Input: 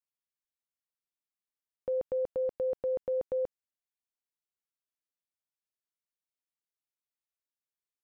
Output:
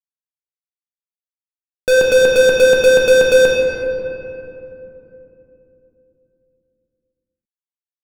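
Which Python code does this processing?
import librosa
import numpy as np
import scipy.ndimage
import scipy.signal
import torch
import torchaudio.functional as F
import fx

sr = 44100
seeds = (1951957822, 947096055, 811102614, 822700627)

y = fx.env_lowpass_down(x, sr, base_hz=470.0, full_db=-29.5)
y = fx.fuzz(y, sr, gain_db=61.0, gate_db=-59.0)
y = fx.room_shoebox(y, sr, seeds[0], volume_m3=140.0, walls='hard', distance_m=0.54)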